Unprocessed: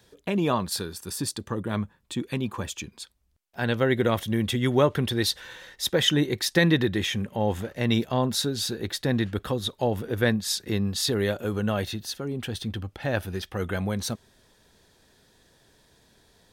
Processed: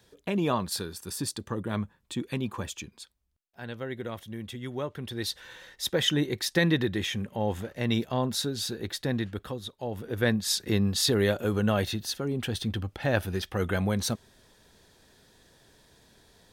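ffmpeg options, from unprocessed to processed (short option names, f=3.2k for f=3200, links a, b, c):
-af "volume=19.5dB,afade=t=out:st=2.6:d=1:silence=0.298538,afade=t=in:st=4.97:d=0.61:silence=0.334965,afade=t=out:st=9:d=0.79:silence=0.398107,afade=t=in:st=9.79:d=0.82:silence=0.237137"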